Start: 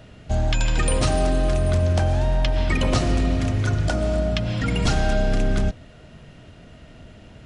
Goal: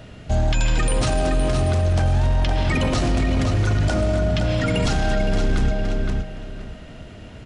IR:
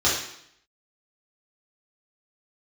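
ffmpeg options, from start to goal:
-filter_complex "[0:a]asplit=2[s0][s1];[s1]adelay=516,lowpass=f=4900:p=1,volume=0.447,asplit=2[s2][s3];[s3]adelay=516,lowpass=f=4900:p=1,volume=0.25,asplit=2[s4][s5];[s5]adelay=516,lowpass=f=4900:p=1,volume=0.25[s6];[s0][s2][s4][s6]amix=inputs=4:normalize=0,alimiter=limit=0.141:level=0:latency=1:release=13,volume=1.68"

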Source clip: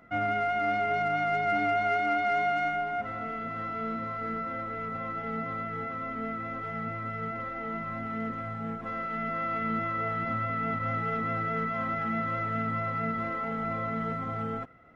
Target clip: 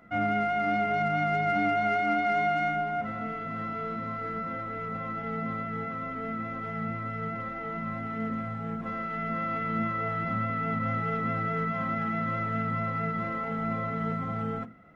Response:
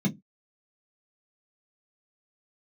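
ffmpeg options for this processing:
-filter_complex "[0:a]asplit=2[s0][s1];[1:a]atrim=start_sample=2205,adelay=26[s2];[s1][s2]afir=irnorm=-1:irlink=0,volume=0.075[s3];[s0][s3]amix=inputs=2:normalize=0"

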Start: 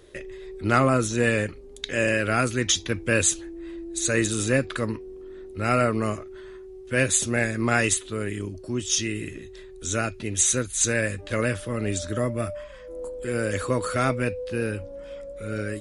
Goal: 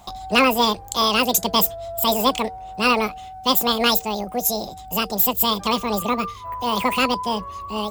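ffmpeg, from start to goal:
-af "bandreject=f=76.53:t=h:w=4,bandreject=f=153.06:t=h:w=4,bandreject=f=229.59:t=h:w=4,asetrate=88200,aresample=44100,volume=1.68"

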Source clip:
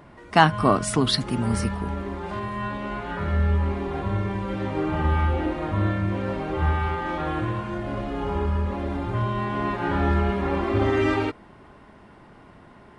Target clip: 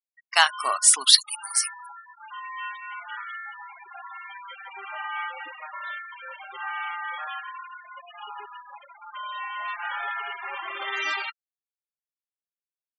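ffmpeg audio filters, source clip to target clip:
-af "highpass=930,crystalizer=i=8.5:c=0,afftfilt=real='re*gte(hypot(re,im),0.0794)':imag='im*gte(hypot(re,im),0.0794)':win_size=1024:overlap=0.75,volume=0.531"

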